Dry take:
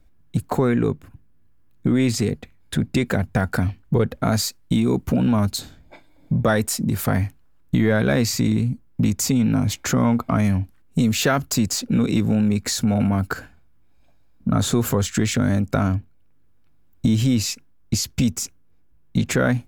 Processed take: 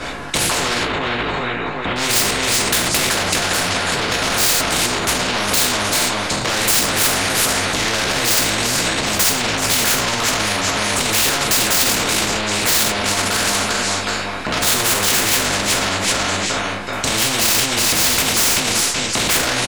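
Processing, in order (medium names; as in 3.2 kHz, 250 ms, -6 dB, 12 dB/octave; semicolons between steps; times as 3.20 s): low-pass 10 kHz 24 dB/octave; feedback delay 380 ms, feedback 30%, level -16 dB; gate -38 dBFS, range -10 dB; peaking EQ 95 Hz -3 dB 1.9 oct; compression 6:1, threshold -29 dBFS, peak gain reduction 13.5 dB; chorus voices 4, 1.2 Hz, delay 17 ms, depth 3 ms; overdrive pedal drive 29 dB, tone 1.9 kHz, clips at -18.5 dBFS; 0.83–1.96 s: low-pass that closes with the level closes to 2.5 kHz, closed at -44 dBFS; gated-style reverb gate 130 ms falling, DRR -4.5 dB; loudness maximiser +27.5 dB; spectrum-flattening compressor 4:1; trim -1 dB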